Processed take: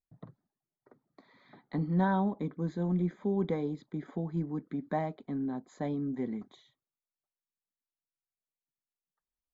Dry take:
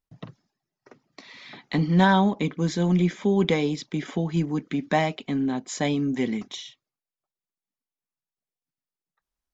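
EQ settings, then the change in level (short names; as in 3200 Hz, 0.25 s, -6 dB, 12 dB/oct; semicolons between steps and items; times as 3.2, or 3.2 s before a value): running mean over 16 samples; -8.5 dB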